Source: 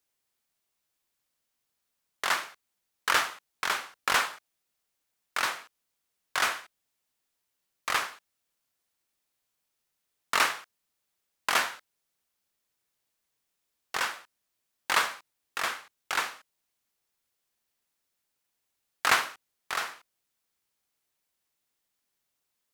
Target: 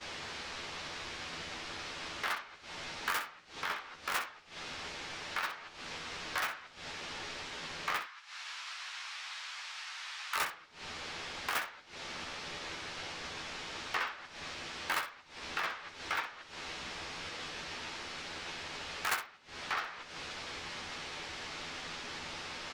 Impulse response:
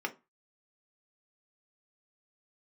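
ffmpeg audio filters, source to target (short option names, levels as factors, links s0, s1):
-filter_complex "[0:a]aeval=exprs='val(0)+0.5*0.0266*sgn(val(0))':c=same,acrossover=split=5300[s0][s1];[s0]acompressor=threshold=0.00891:ratio=16[s2];[s1]acrusher=bits=3:mix=0:aa=0.5[s3];[s2][s3]amix=inputs=2:normalize=0,volume=50.1,asoftclip=hard,volume=0.02,agate=range=0.0224:threshold=0.0158:ratio=3:detection=peak,asettb=1/sr,asplit=3[s4][s5][s6];[s4]atrim=end=8.004[s7];[s5]atrim=start=8:end=10.36,asetpts=PTS-STARTPTS,afade=t=in:d=0.004:c=qsin,afade=t=out:st=2.356:d=0.004:c=qsin,highpass=f=980:w=0.5412,highpass=f=980:w=1.3066[s8];[s6]atrim=start=10.356[s9];[s7][s8]acrossfade=d=0.004:c1=hsin:c2=qsin[s10];[s10][s9]acrossfade=d=0.004:c1=qsin:c2=hsin,aecho=1:1:12|63:0.562|0.316,asplit=2[s11][s12];[1:a]atrim=start_sample=2205[s13];[s12][s13]afir=irnorm=-1:irlink=0,volume=0.15[s14];[s11][s14]amix=inputs=2:normalize=0,volume=5.01"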